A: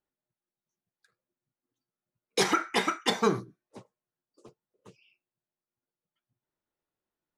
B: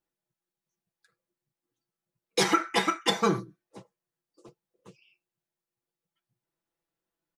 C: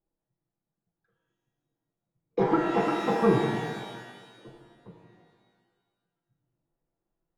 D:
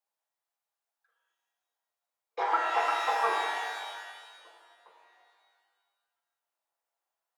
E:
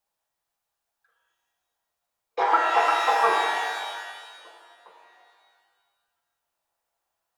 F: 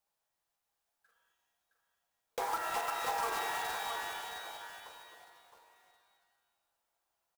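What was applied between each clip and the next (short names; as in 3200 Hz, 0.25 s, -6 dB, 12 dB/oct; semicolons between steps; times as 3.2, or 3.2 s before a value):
comb 6 ms, depth 57%
Chebyshev low-pass 810 Hz, order 2; low shelf 140 Hz +12 dB; shimmer reverb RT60 1.5 s, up +12 st, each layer -8 dB, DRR -0.5 dB
HPF 730 Hz 24 dB/oct; gain +3.5 dB
low shelf 160 Hz +11 dB; notch 2100 Hz, Q 28; gain +6.5 dB
block floating point 3-bit; compressor 3:1, threshold -33 dBFS, peak gain reduction 13.5 dB; on a send: echo 0.666 s -7.5 dB; on the sum: gain -3.5 dB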